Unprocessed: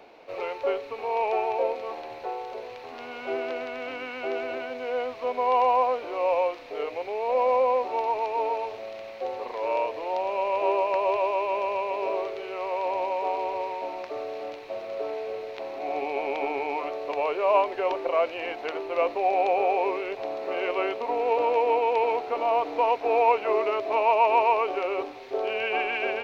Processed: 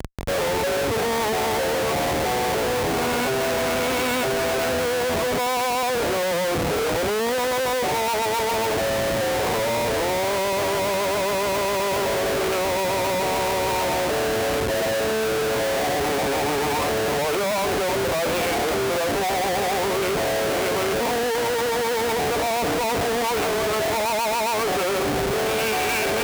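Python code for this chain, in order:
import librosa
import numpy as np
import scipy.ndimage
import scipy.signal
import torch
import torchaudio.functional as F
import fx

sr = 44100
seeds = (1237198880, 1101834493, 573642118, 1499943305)

p1 = fx.over_compress(x, sr, threshold_db=-34.0, ratio=-1.0)
p2 = x + F.gain(torch.from_numpy(p1), 0.0).numpy()
p3 = fx.schmitt(p2, sr, flips_db=-32.5)
p4 = scipy.signal.sosfilt(scipy.signal.butter(2, 44.0, 'highpass', fs=sr, output='sos'), p3)
y = F.gain(torch.from_numpy(p4), 1.5).numpy()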